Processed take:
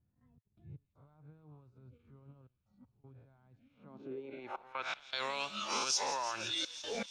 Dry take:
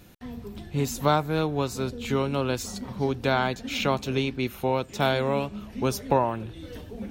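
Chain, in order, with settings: reverse spectral sustain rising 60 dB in 0.43 s; frequency weighting ITU-R 468; spectral noise reduction 11 dB; peaking EQ 1.2 kHz +6.5 dB 1.8 oct; level rider gain up to 10.5 dB; peak limiter -18 dBFS, peak gain reduction 17 dB; compression 5:1, threshold -35 dBFS, peak gain reduction 11.5 dB; trance gate "xx.x.xxxxxx" 79 bpm -24 dB; bit crusher 10-bit; low-pass sweep 110 Hz -> 6 kHz, 3.64–5.27 s; feedback echo behind a high-pass 169 ms, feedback 81%, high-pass 3.6 kHz, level -11 dB; tape noise reduction on one side only encoder only

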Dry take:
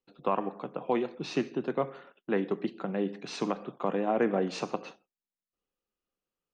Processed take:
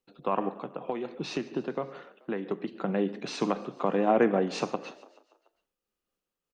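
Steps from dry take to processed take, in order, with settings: 0.59–2.73 s: compression 6:1, threshold -31 dBFS, peak gain reduction 9 dB; frequency-shifting echo 144 ms, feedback 62%, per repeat +31 Hz, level -22 dB; random flutter of the level, depth 50%; trim +5 dB

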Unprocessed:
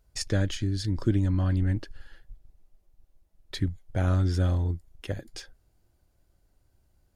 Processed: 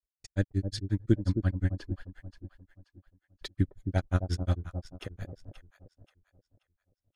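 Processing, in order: gate -53 dBFS, range -27 dB; granulator 91 ms, grains 5.6 per s, spray 100 ms, pitch spread up and down by 0 st; echo whose repeats swap between lows and highs 265 ms, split 840 Hz, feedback 56%, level -7.5 dB; trim +2 dB

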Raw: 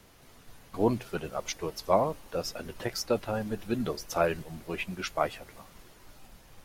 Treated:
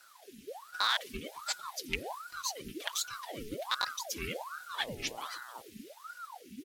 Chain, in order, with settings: rattle on loud lows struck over -29 dBFS, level -15 dBFS; Chebyshev band-stop 150–2400 Hz, order 3; comb 4.5 ms, depth 69%; 4.74–5.60 s: mains buzz 120 Hz, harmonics 5, -50 dBFS -4 dB/octave; ring modulator with a swept carrier 840 Hz, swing 75%, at 1.3 Hz; trim +3 dB

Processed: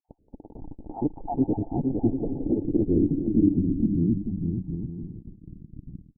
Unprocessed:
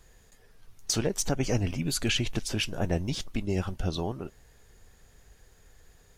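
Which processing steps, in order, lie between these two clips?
random holes in the spectrogram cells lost 43%; bass shelf 460 Hz +7.5 dB; in parallel at -4 dB: fuzz box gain 48 dB, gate -45 dBFS; on the sum: bouncing-ball echo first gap 460 ms, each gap 0.6×, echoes 5; 2.19–2.78 s: integer overflow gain 9.5 dB; low-pass that closes with the level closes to 500 Hz, closed at -13.5 dBFS; cascade formant filter u; low-pass sweep 750 Hz -> 180 Hz, 1.79–4.36 s; loudness maximiser +9 dB; trim -8.5 dB

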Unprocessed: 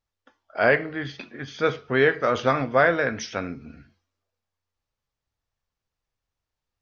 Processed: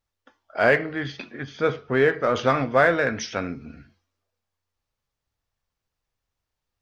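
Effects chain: 1.43–2.36 s: treble shelf 2.3 kHz -7.5 dB; in parallel at -12 dB: hard clipper -24 dBFS, distortion -5 dB

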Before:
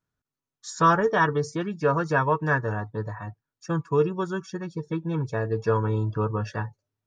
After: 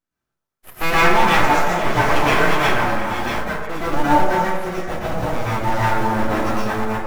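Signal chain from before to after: chunks repeated in reverse 571 ms, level -7.5 dB; 4.72–6.01 s: high-pass 170 Hz 12 dB/octave; in parallel at -8.5 dB: bit crusher 5-bit; on the sum: full-wave rectifier; repeats whose band climbs or falls 120 ms, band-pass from 600 Hz, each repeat 0.7 oct, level -3 dB; plate-style reverb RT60 0.8 s, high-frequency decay 0.55×, pre-delay 100 ms, DRR -8.5 dB; trim -2.5 dB

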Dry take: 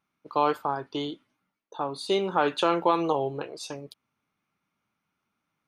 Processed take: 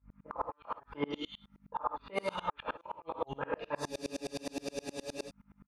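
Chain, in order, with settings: bands offset in time lows, highs 180 ms, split 2.7 kHz; hum 50 Hz, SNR 21 dB; graphic EQ 1/2/4/8 kHz +9/+8/-9/-8 dB; inverted gate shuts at -11 dBFS, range -41 dB; gated-style reverb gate 150 ms flat, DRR -1 dB; peak limiter -22.5 dBFS, peak gain reduction 13.5 dB; peaking EQ 200 Hz -6 dB 1.5 oct; comb of notches 370 Hz; spectral freeze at 3.89 s, 1.39 s; sawtooth tremolo in dB swelling 9.6 Hz, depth 31 dB; trim +6.5 dB

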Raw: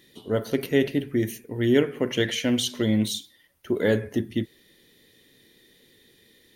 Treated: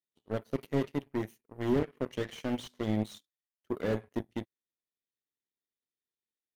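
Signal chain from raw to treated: power-law waveshaper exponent 2; slew-rate limiter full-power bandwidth 22 Hz; trim +2 dB

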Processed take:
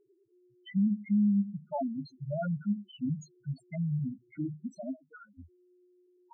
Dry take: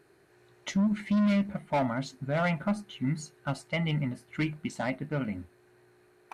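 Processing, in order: 4.95–5.39 s: auto-wah 610–1400 Hz, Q 3.9, up, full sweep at -26.5 dBFS; loudest bins only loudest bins 2

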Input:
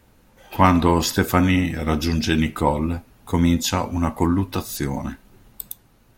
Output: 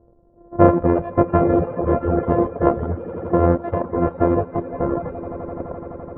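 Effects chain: sorted samples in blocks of 128 samples; peaking EQ 510 Hz +13 dB 0.56 oct; level-controlled noise filter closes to 640 Hz, open at -12.5 dBFS; on a send: echo with a slow build-up 85 ms, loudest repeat 8, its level -15 dB; on the sum: reverb removal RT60 1.1 s; low-pass 1.3 kHz 24 dB/octave; trim +1 dB

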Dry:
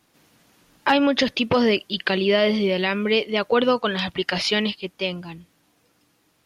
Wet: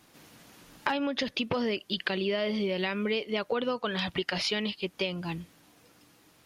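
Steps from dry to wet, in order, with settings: compression 6:1, threshold -32 dBFS, peak gain reduction 16.5 dB; trim +4 dB

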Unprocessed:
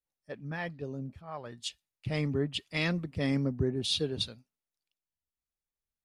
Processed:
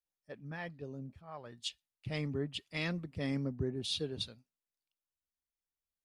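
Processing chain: 1.48–2.18 s: dynamic bell 3.3 kHz, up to +5 dB, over -50 dBFS, Q 0.92; trim -6 dB

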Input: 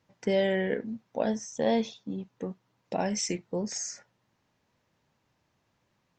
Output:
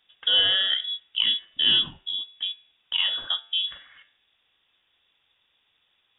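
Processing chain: de-hum 100.5 Hz, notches 32; frequency inversion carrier 3.6 kHz; trim +5 dB

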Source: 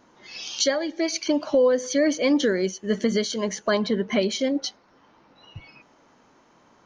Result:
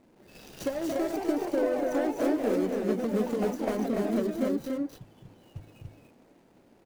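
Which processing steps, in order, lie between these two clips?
median filter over 41 samples; dynamic bell 3.6 kHz, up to -7 dB, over -48 dBFS, Q 0.77; compression, threshold -27 dBFS, peak gain reduction 9.5 dB; treble shelf 7.3 kHz +7.5 dB; loudspeakers at several distances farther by 87 m -7 dB, 99 m -3 dB; ever faster or slower copies 334 ms, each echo +3 st, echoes 3, each echo -6 dB; de-hum 52.98 Hz, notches 3

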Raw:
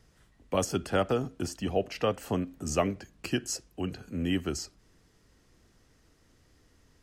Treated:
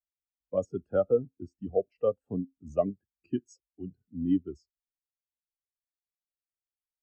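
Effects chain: spectral contrast expander 2.5:1; trim -1.5 dB

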